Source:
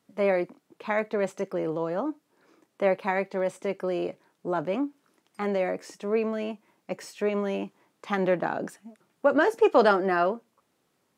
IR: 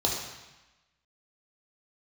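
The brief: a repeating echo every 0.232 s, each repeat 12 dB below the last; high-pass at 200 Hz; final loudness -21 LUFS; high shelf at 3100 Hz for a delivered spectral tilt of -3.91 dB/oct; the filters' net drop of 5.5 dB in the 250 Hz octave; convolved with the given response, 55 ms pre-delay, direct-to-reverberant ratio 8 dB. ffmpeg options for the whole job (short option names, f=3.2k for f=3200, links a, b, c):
-filter_complex "[0:a]highpass=200,equalizer=f=250:t=o:g=-6,highshelf=f=3.1k:g=-8,aecho=1:1:232|464|696:0.251|0.0628|0.0157,asplit=2[a][b];[1:a]atrim=start_sample=2205,adelay=55[c];[b][c]afir=irnorm=-1:irlink=0,volume=-18dB[d];[a][d]amix=inputs=2:normalize=0,volume=7dB"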